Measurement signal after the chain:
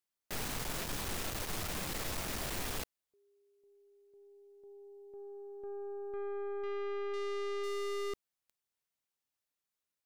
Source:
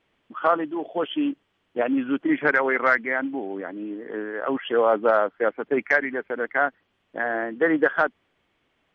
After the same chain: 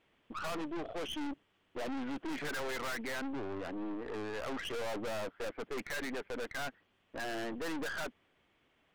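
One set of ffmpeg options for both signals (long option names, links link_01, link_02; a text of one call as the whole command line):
ffmpeg -i in.wav -af "aeval=exprs='(tanh(70.8*val(0)+0.55)-tanh(0.55))/70.8':channel_layout=same" out.wav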